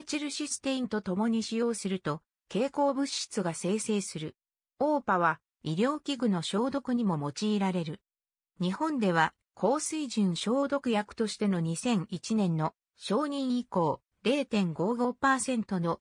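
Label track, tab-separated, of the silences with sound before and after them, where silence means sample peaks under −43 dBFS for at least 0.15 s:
2.180000	2.510000	silence
4.300000	4.800000	silence
5.350000	5.650000	silence
7.950000	8.600000	silence
9.290000	9.570000	silence
12.690000	13.020000	silence
13.950000	14.250000	silence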